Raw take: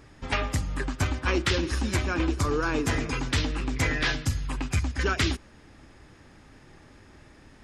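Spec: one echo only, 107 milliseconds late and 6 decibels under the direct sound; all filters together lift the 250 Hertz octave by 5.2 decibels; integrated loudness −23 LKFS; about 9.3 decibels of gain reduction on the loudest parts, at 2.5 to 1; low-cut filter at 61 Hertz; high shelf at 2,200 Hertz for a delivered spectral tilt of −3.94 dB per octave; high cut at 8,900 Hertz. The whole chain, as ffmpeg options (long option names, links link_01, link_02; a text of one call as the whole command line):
ffmpeg -i in.wav -af "highpass=61,lowpass=8900,equalizer=frequency=250:width_type=o:gain=6.5,highshelf=frequency=2200:gain=8,acompressor=threshold=-33dB:ratio=2.5,aecho=1:1:107:0.501,volume=9dB" out.wav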